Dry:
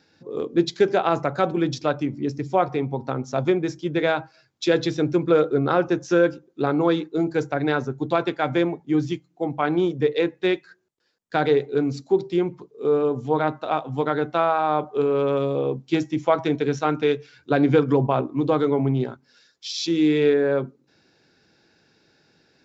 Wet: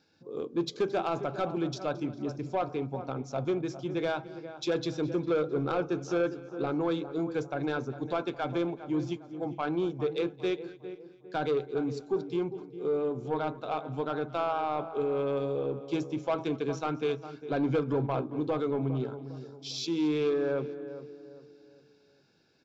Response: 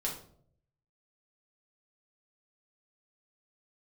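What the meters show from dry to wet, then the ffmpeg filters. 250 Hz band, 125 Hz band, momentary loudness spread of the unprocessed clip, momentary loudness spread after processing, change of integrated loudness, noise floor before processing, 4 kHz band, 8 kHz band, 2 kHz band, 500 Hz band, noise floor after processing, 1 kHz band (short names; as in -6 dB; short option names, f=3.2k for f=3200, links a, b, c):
-9.0 dB, -8.5 dB, 8 LU, 8 LU, -9.0 dB, -63 dBFS, -8.5 dB, n/a, -11.0 dB, -9.0 dB, -59 dBFS, -9.5 dB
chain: -filter_complex "[0:a]asplit=2[a][b];[b]adelay=404,lowpass=f=1.2k:p=1,volume=-13dB,asplit=2[c][d];[d]adelay=404,lowpass=f=1.2k:p=1,volume=0.41,asplit=2[e][f];[f]adelay=404,lowpass=f=1.2k:p=1,volume=0.41,asplit=2[g][h];[h]adelay=404,lowpass=f=1.2k:p=1,volume=0.41[i];[c][e][g][i]amix=inputs=4:normalize=0[j];[a][j]amix=inputs=2:normalize=0,asoftclip=type=tanh:threshold=-13.5dB,bandreject=f=1.9k:w=5.5,asplit=2[k][l];[l]aecho=0:1:221|442|663|884:0.0944|0.0491|0.0255|0.0133[m];[k][m]amix=inputs=2:normalize=0,volume=-7.5dB"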